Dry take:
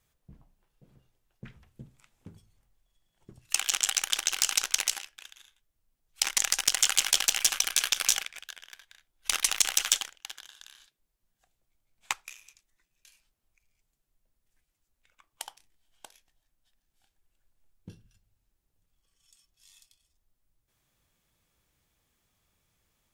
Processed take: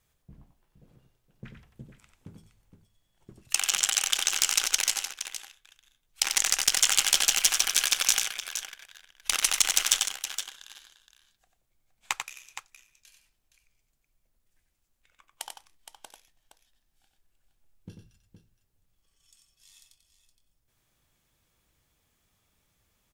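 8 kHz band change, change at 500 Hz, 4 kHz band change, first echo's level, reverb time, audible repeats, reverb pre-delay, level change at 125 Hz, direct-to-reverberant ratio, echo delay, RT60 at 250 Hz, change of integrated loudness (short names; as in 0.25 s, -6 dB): +2.5 dB, +2.0 dB, +2.5 dB, -6.0 dB, none, 2, none, n/a, none, 92 ms, none, +1.5 dB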